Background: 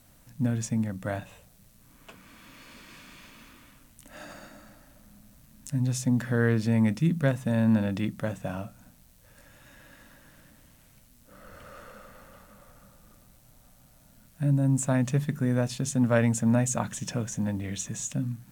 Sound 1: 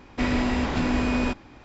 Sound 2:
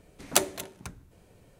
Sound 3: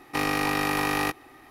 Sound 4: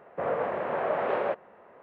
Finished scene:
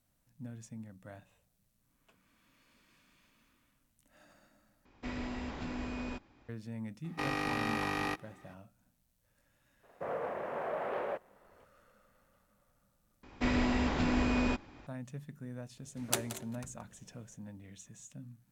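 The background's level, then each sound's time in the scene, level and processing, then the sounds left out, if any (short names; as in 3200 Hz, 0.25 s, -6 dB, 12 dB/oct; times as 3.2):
background -18.5 dB
4.85 replace with 1 -15.5 dB
7.04 add 3 -8.5 dB + air absorption 51 m
9.83 add 4 -11.5 dB + sample leveller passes 1
13.23 replace with 1 -6 dB
15.77 add 2 -9.5 dB + echo 0.175 s -14 dB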